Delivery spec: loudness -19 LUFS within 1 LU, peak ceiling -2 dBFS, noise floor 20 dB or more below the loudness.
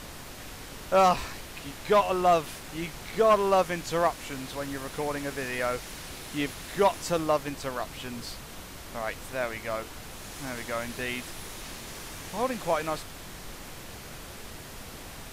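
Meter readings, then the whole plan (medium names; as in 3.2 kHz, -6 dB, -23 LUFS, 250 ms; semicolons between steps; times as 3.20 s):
noise floor -43 dBFS; noise floor target -49 dBFS; loudness -29.0 LUFS; peak level -13.5 dBFS; loudness target -19.0 LUFS
-> noise print and reduce 6 dB; trim +10 dB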